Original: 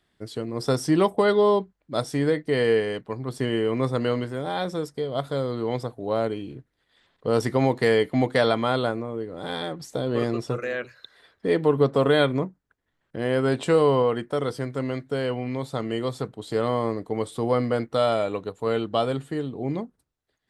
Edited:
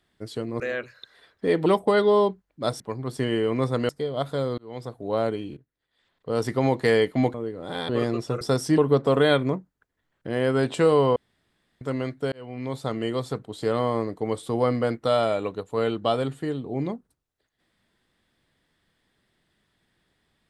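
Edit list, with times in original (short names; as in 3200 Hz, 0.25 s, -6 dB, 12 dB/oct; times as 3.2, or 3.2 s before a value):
0.6–0.97 swap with 10.61–11.67
2.11–3.01 cut
4.1–4.87 cut
5.56–6.05 fade in
6.55–7.8 fade in, from -17.5 dB
8.32–9.08 cut
9.63–10.09 cut
14.05–14.7 room tone
15.21–15.64 fade in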